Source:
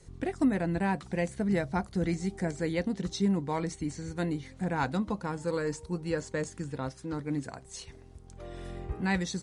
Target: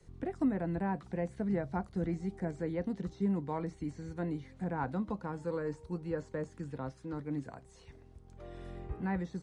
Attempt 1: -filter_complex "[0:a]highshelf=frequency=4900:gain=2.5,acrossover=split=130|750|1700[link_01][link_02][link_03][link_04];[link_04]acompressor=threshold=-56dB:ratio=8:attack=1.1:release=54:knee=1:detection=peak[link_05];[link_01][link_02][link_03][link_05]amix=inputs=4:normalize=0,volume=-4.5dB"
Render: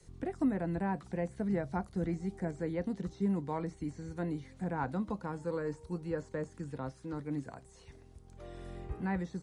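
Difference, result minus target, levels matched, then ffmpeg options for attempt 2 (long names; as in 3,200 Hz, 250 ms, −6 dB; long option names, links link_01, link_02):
8,000 Hz band +3.0 dB
-filter_complex "[0:a]highshelf=frequency=4900:gain=-9.5,acrossover=split=130|750|1700[link_01][link_02][link_03][link_04];[link_04]acompressor=threshold=-56dB:ratio=8:attack=1.1:release=54:knee=1:detection=peak[link_05];[link_01][link_02][link_03][link_05]amix=inputs=4:normalize=0,volume=-4.5dB"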